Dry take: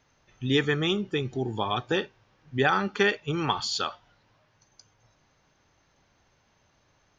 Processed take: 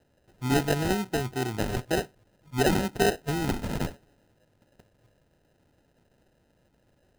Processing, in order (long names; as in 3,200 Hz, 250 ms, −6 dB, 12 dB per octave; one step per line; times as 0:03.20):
decimation without filtering 39×